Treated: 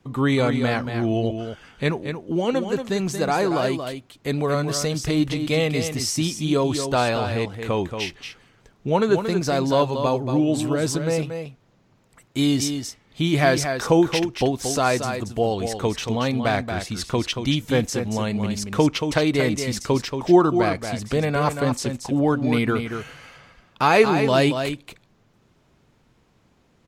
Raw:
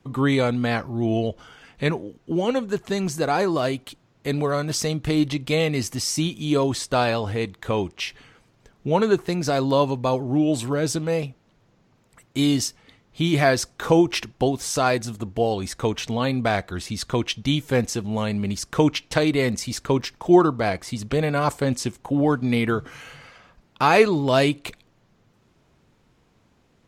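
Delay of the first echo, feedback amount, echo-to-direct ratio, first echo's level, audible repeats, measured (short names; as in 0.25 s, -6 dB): 0.23 s, no steady repeat, -7.5 dB, -7.5 dB, 1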